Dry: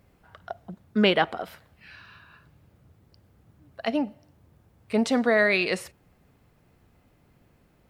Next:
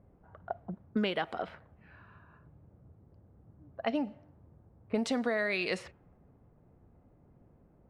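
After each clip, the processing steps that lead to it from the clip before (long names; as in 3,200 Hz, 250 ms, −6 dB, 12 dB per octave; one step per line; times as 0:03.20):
low-pass that shuts in the quiet parts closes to 810 Hz, open at −19.5 dBFS
downward compressor 16 to 1, threshold −27 dBFS, peak gain reduction 13 dB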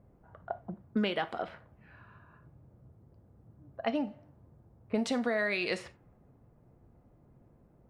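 reverb whose tail is shaped and stops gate 110 ms falling, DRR 11.5 dB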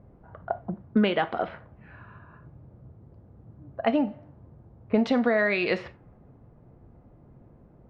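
high-frequency loss of the air 250 metres
level +8.5 dB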